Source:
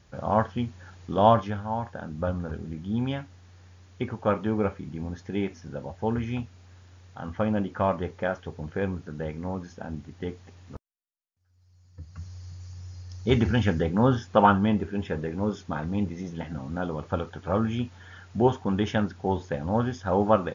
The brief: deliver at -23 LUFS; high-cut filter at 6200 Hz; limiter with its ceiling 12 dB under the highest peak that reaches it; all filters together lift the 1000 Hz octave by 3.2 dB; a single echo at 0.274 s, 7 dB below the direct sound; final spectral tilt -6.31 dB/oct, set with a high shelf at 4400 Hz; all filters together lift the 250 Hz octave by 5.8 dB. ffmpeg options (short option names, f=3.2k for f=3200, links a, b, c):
-af "lowpass=6.2k,equalizer=f=250:t=o:g=7,equalizer=f=1k:t=o:g=4,highshelf=f=4.4k:g=-7.5,alimiter=limit=-14.5dB:level=0:latency=1,aecho=1:1:274:0.447,volume=3.5dB"